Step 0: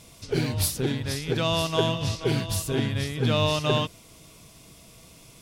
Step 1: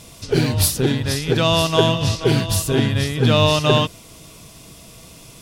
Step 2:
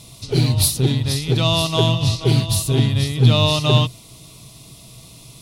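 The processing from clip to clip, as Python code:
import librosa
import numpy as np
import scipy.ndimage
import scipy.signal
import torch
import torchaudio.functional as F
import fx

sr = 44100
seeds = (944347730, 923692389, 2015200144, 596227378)

y1 = fx.notch(x, sr, hz=2200.0, q=19.0)
y1 = y1 * 10.0 ** (8.0 / 20.0)
y2 = fx.graphic_eq_31(y1, sr, hz=(125, 500, 1600, 4000, 10000), db=(10, -5, -12, 8, 5))
y2 = y2 * 10.0 ** (-2.5 / 20.0)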